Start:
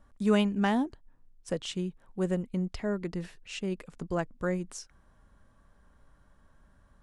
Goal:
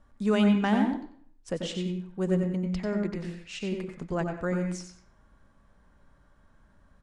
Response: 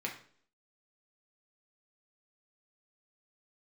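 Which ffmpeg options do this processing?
-filter_complex "[0:a]lowpass=8.6k,asplit=2[a][b];[b]adelay=93.29,volume=-10dB,highshelf=f=4k:g=-2.1[c];[a][c]amix=inputs=2:normalize=0,asplit=2[d][e];[1:a]atrim=start_sample=2205,adelay=90[f];[e][f]afir=irnorm=-1:irlink=0,volume=-6.5dB[g];[d][g]amix=inputs=2:normalize=0"

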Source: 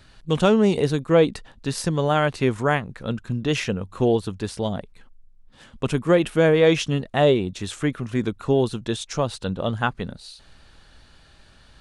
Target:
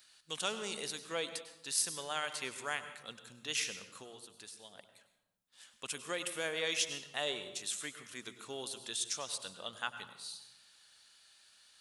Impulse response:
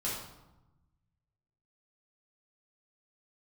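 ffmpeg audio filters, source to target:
-filter_complex "[0:a]aderivative,asettb=1/sr,asplit=3[a][b][c];[a]atrim=end=3.984[d];[b]atrim=start=3.98:end=4.78,asetpts=PTS-STARTPTS,afade=t=in:d=0.004:c=qsin,afade=t=out:st=0.796:d=0.004:c=qsin,acompressor=threshold=-49dB:ratio=6[e];[c]atrim=start=4.776[f];[d][e]acrossfade=d=0.004:c1=hsin:c2=qsin[g];[g][f]acrossfade=d=0.004:c1=qsin:c2=hsin,asplit=2[h][i];[1:a]atrim=start_sample=2205,adelay=96[j];[i][j]afir=irnorm=-1:irlink=0,volume=-14.5dB[k];[h][k]amix=inputs=2:normalize=0"

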